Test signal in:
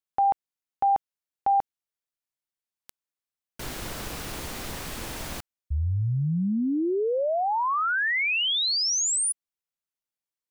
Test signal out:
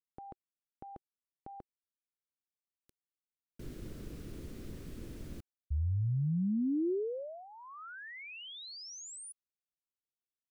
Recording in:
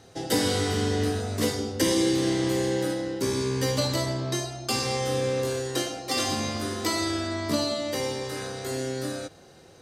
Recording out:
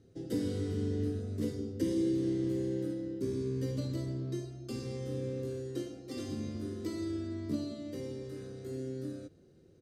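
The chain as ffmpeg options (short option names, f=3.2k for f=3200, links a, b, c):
-af "firequalizer=gain_entry='entry(360,0);entry(800,-22);entry(1300,-16)':delay=0.05:min_phase=1,volume=-6dB"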